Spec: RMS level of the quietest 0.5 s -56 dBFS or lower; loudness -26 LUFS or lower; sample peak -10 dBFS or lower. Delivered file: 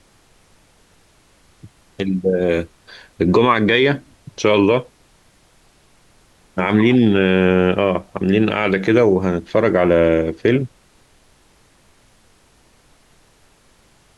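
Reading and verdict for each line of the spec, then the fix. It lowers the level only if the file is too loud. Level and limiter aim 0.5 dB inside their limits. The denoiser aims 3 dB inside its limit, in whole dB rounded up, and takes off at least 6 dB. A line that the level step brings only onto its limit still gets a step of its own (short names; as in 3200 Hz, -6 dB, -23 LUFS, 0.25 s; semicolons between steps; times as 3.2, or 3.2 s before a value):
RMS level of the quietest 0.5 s -54 dBFS: fail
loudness -16.5 LUFS: fail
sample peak -4.0 dBFS: fail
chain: gain -10 dB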